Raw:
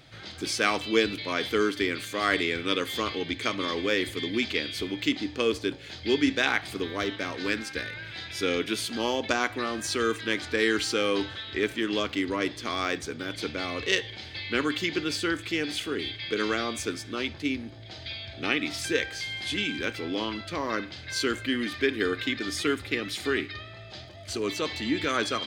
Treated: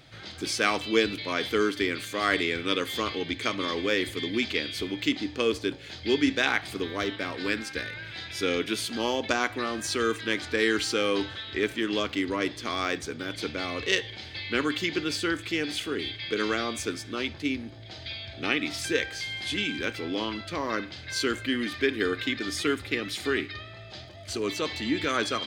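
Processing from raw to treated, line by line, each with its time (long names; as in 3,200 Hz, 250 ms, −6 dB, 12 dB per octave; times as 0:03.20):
0:07.11–0:07.62: notch filter 6,200 Hz, Q 5.8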